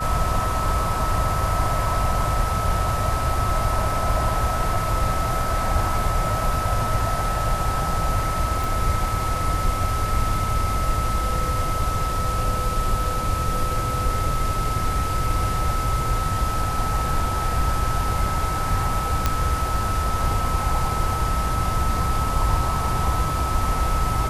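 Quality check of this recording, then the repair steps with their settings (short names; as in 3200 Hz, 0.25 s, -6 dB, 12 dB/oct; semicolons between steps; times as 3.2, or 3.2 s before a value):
tone 1300 Hz -26 dBFS
8.64 pop
19.26 pop -5 dBFS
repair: de-click; notch 1300 Hz, Q 30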